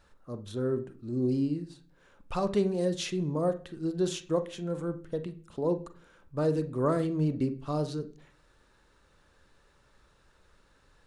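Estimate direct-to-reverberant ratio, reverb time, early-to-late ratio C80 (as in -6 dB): 10.0 dB, 0.45 s, 20.0 dB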